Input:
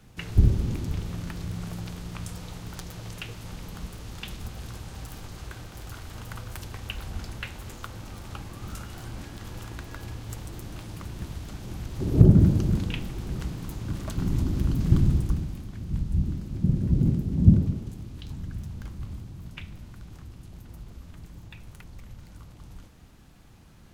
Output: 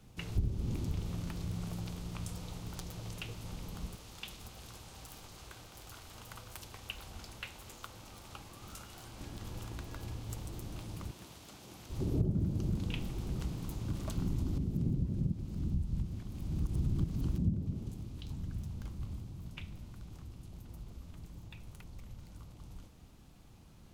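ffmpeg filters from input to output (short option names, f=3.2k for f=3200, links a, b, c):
-filter_complex "[0:a]asettb=1/sr,asplit=3[a][b][c];[a]atrim=end=3.954[d];[b]atrim=start=3.95:end=9.21,asetpts=PTS-STARTPTS,afade=t=in:d=0.004:c=qsin,afade=t=out:st=5.256:d=0.004:c=qsin,lowshelf=f=370:g=-10.5[e];[c]atrim=start=9.206[f];[d][e]acrossfade=d=0.004:c1=hsin:c2=qsin[g];[g][f]acrossfade=d=0.004:c1=qsin:c2=hsin,asettb=1/sr,asplit=3[h][i][j];[h]atrim=end=11.114[k];[i]atrim=start=11.11:end=11.9,asetpts=PTS-STARTPTS,afade=t=in:d=0.004:c=qsin,afade=t=out:st=0.786:d=0.004:c=qsin,highpass=f=600:p=1[l];[j]atrim=start=11.896[m];[k][l]acrossfade=d=0.004:c1=hsin:c2=qsin[n];[n][m]acrossfade=d=0.004:c1=qsin:c2=hsin,asplit=3[o][p][q];[o]atrim=end=14.582[r];[p]atrim=start=14.578:end=17.382,asetpts=PTS-STARTPTS,areverse[s];[q]atrim=start=17.378[t];[r][s]acrossfade=d=0.004:c1=hsin:c2=hsin[u];[u][t]acrossfade=d=0.004:c1=hsin:c2=hsin,equalizer=f=1.7k:w=2.1:g=-6,acompressor=threshold=-25dB:ratio=4,volume=-4.5dB"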